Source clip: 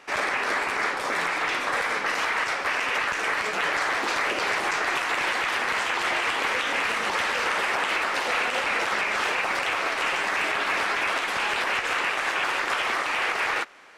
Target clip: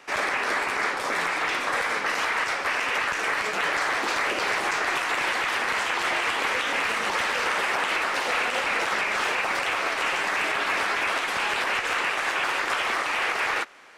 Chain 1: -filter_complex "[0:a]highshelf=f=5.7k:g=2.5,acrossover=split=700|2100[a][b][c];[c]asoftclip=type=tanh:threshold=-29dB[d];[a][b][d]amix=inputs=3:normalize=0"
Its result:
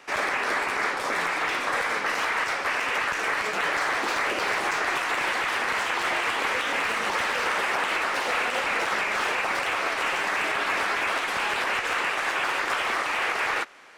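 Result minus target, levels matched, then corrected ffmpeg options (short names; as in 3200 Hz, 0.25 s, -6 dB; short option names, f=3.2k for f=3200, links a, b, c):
soft clip: distortion +10 dB
-filter_complex "[0:a]highshelf=f=5.7k:g=2.5,acrossover=split=700|2100[a][b][c];[c]asoftclip=type=tanh:threshold=-22dB[d];[a][b][d]amix=inputs=3:normalize=0"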